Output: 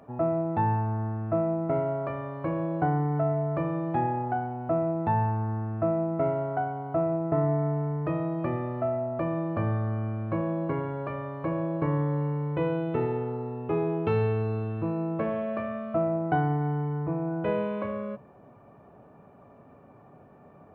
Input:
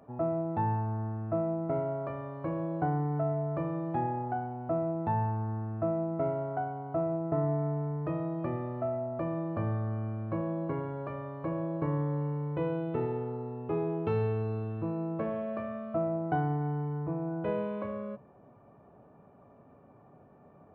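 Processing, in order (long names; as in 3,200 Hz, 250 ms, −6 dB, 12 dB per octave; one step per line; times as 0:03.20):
parametric band 2,400 Hz +4 dB 1.5 octaves
level +4 dB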